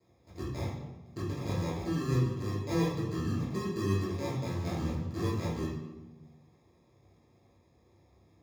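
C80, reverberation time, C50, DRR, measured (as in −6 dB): 5.0 dB, 1.1 s, 1.0 dB, −9.5 dB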